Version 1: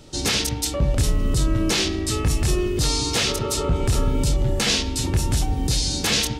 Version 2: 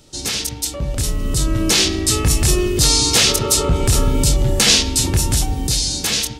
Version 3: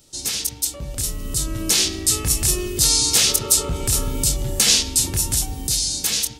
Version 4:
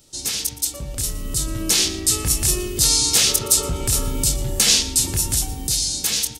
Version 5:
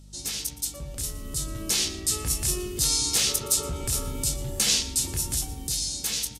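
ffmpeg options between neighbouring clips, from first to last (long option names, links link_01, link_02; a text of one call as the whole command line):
ffmpeg -i in.wav -af "dynaudnorm=framelen=390:gausssize=7:maxgain=12dB,highshelf=frequency=4400:gain=9,volume=-4.5dB" out.wav
ffmpeg -i in.wav -af "crystalizer=i=2:c=0,volume=-8.5dB" out.wav
ffmpeg -i in.wav -af "aecho=1:1:118:0.126" out.wav
ffmpeg -i in.wav -filter_complex "[0:a]aeval=exprs='val(0)+0.0112*(sin(2*PI*50*n/s)+sin(2*PI*2*50*n/s)/2+sin(2*PI*3*50*n/s)/3+sin(2*PI*4*50*n/s)/4+sin(2*PI*5*50*n/s)/5)':channel_layout=same,asplit=2[link_01][link_02];[link_02]adelay=14,volume=-11dB[link_03];[link_01][link_03]amix=inputs=2:normalize=0,aresample=32000,aresample=44100,volume=-7.5dB" out.wav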